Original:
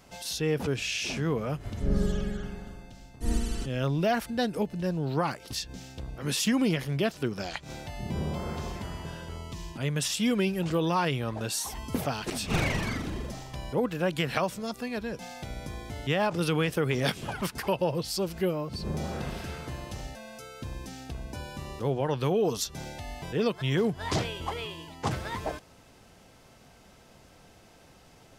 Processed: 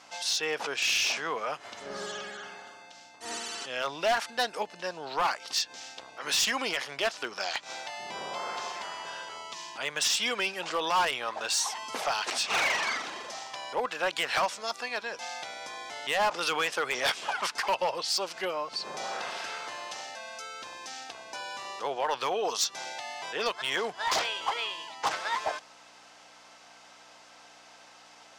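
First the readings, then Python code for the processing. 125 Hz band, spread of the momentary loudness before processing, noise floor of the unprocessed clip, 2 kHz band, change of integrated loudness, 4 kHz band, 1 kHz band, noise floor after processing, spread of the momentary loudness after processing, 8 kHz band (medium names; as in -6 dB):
-25.0 dB, 13 LU, -56 dBFS, +5.0 dB, 0.0 dB, +5.5 dB, +4.5 dB, -54 dBFS, 13 LU, +4.0 dB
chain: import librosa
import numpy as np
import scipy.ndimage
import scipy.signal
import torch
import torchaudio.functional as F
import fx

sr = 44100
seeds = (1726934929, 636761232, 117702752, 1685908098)

y = fx.add_hum(x, sr, base_hz=60, snr_db=14)
y = scipy.signal.sosfilt(scipy.signal.cheby1(2, 1.0, [860.0, 6400.0], 'bandpass', fs=sr, output='sos'), y)
y = np.clip(10.0 ** (28.5 / 20.0) * y, -1.0, 1.0) / 10.0 ** (28.5 / 20.0)
y = F.gain(torch.from_numpy(y), 7.0).numpy()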